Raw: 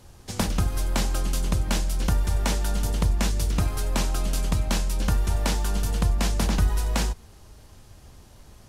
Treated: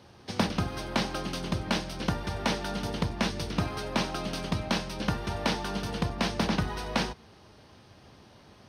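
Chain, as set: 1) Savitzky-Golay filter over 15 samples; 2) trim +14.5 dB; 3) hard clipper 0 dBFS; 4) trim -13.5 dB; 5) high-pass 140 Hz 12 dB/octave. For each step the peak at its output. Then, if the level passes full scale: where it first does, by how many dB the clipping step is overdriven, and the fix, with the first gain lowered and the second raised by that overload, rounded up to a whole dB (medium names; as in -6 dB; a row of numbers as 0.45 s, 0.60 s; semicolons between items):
-10.0 dBFS, +4.5 dBFS, 0.0 dBFS, -13.5 dBFS, -12.0 dBFS; step 2, 4.5 dB; step 2 +9.5 dB, step 4 -8.5 dB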